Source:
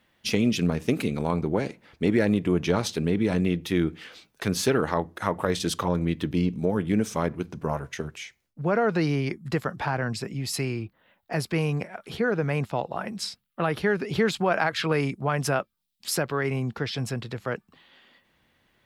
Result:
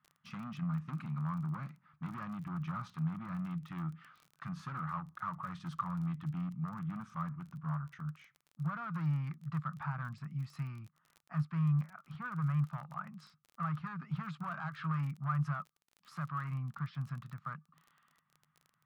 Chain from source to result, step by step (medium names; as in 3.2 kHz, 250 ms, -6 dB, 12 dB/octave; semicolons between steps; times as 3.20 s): hard clipper -23 dBFS, distortion -8 dB; two resonant band-passes 430 Hz, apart 3 oct; crackle 27 per s -46 dBFS